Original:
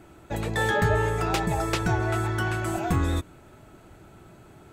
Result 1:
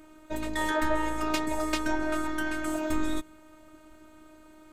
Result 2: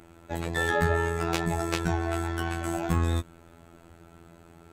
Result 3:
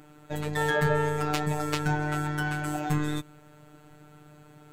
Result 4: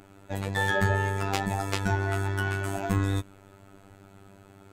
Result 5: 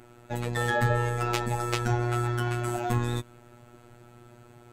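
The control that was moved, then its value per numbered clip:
robotiser, frequency: 310, 84, 150, 98, 120 Hz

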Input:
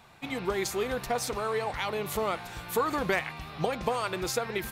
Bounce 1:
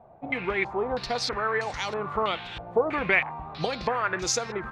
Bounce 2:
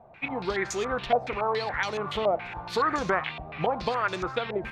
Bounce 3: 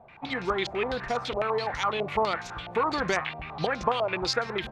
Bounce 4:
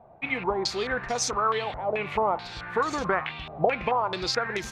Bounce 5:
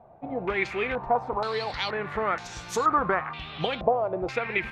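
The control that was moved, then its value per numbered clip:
stepped low-pass, rate: 3.1, 7.1, 12, 4.6, 2.1 Hz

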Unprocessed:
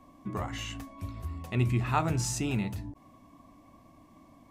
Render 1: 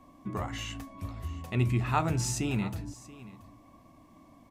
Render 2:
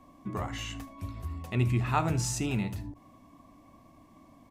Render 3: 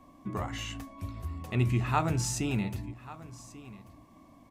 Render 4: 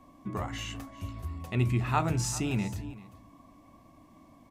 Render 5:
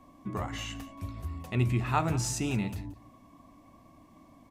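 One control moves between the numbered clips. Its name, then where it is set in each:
echo, time: 681, 75, 1139, 391, 177 ms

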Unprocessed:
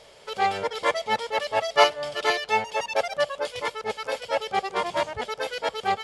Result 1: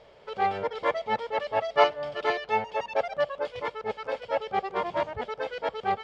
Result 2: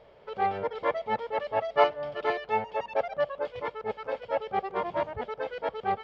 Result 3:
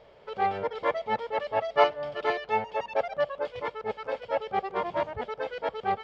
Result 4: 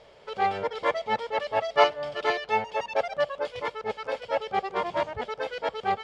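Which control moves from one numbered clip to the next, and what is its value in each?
tape spacing loss, at 10 kHz: 28, 45, 37, 20 dB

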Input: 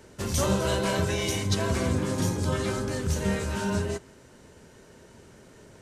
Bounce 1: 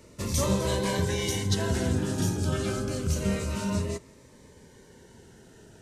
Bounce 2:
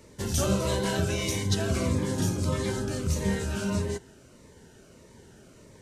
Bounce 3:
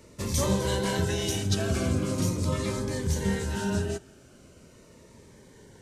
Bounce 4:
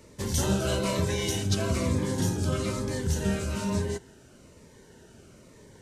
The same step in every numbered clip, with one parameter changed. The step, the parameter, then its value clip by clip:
cascading phaser, rate: 0.27, 1.6, 0.41, 1.1 Hz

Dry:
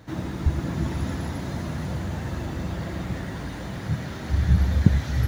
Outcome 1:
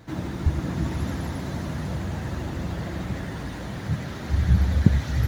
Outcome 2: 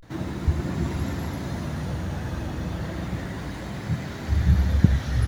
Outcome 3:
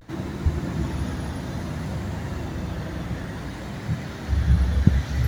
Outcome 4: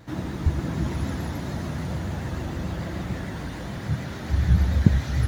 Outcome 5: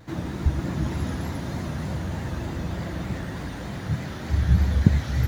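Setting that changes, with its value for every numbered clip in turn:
vibrato, rate: 13, 0.32, 0.59, 6.8, 3.3 Hz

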